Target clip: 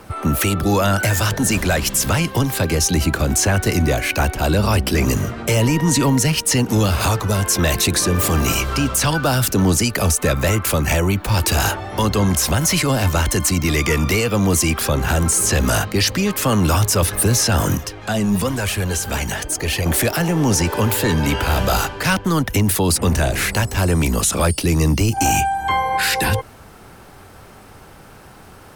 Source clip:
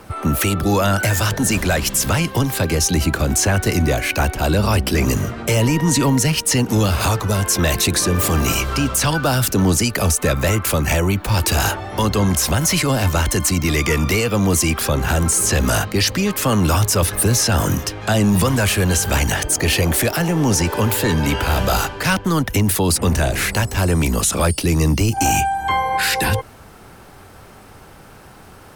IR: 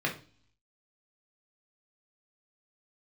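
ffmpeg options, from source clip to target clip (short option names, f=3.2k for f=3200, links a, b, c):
-filter_complex "[0:a]asettb=1/sr,asplit=3[a][b][c];[a]atrim=end=17.774[d];[b]atrim=start=17.77:end=19.86,asetpts=PTS-STARTPTS,afade=t=in:d=0.004:c=qsin,afade=t=out:st=2.086:d=0.004:c=qsin,flanger=delay=0.9:depth=4.7:regen=51:speed=1:shape=triangular[e];[c]atrim=start=19.856[f];[d][e]acrossfade=d=0.004:c1=hsin:c2=qsin[g];[g][f]acrossfade=d=0.004:c1=qsin:c2=hsin"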